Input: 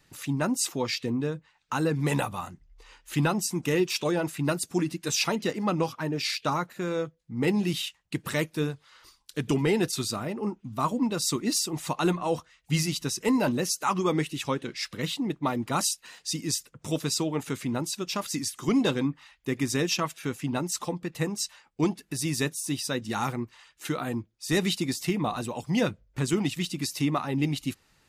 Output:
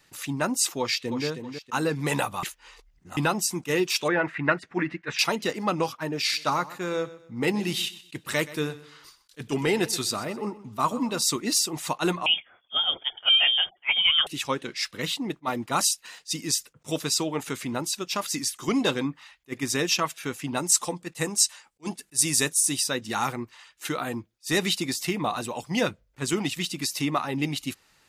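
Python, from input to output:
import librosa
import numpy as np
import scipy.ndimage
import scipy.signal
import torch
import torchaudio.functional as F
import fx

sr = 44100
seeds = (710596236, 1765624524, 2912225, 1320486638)

y = fx.echo_throw(x, sr, start_s=0.79, length_s=0.47, ms=320, feedback_pct=35, wet_db=-8.0)
y = fx.lowpass_res(y, sr, hz=1900.0, q=3.5, at=(4.08, 5.19))
y = fx.echo_feedback(y, sr, ms=126, feedback_pct=32, wet_db=-17, at=(6.31, 11.22), fade=0.02)
y = fx.freq_invert(y, sr, carrier_hz=3400, at=(12.26, 14.27))
y = fx.peak_eq(y, sr, hz=8600.0, db=9.5, octaves=1.1, at=(20.57, 22.84))
y = fx.edit(y, sr, fx.reverse_span(start_s=2.43, length_s=0.74), tone=tone)
y = fx.low_shelf(y, sr, hz=330.0, db=-9.0)
y = fx.attack_slew(y, sr, db_per_s=520.0)
y = y * librosa.db_to_amplitude(4.0)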